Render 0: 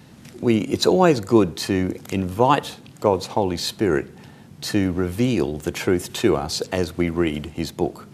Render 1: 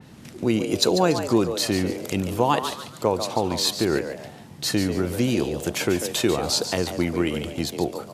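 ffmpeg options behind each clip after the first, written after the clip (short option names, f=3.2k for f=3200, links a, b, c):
-filter_complex "[0:a]acompressor=threshold=-23dB:ratio=1.5,asplit=5[a][b][c][d][e];[b]adelay=143,afreqshift=120,volume=-9.5dB[f];[c]adelay=286,afreqshift=240,volume=-19.1dB[g];[d]adelay=429,afreqshift=360,volume=-28.8dB[h];[e]adelay=572,afreqshift=480,volume=-38.4dB[i];[a][f][g][h][i]amix=inputs=5:normalize=0,adynamicequalizer=threshold=0.00708:dfrequency=3000:dqfactor=0.7:tfrequency=3000:tqfactor=0.7:attack=5:release=100:ratio=0.375:range=2.5:mode=boostabove:tftype=highshelf"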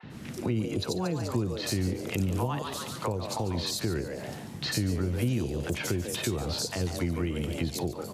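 -filter_complex "[0:a]acrossover=split=710|4000[a][b][c];[a]adelay=30[d];[c]adelay=90[e];[d][b][e]amix=inputs=3:normalize=0,acrossover=split=130[f][g];[g]acompressor=threshold=-33dB:ratio=10[h];[f][h]amix=inputs=2:normalize=0,volume=3.5dB"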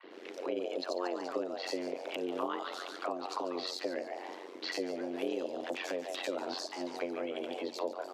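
-filter_complex "[0:a]afreqshift=170,tremolo=f=90:d=0.824,acrossover=split=320 5200:gain=0.0891 1 0.112[a][b][c];[a][b][c]amix=inputs=3:normalize=0"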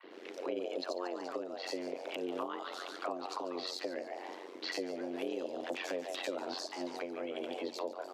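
-af "alimiter=level_in=0.5dB:limit=-24dB:level=0:latency=1:release=418,volume=-0.5dB,volume=-1dB"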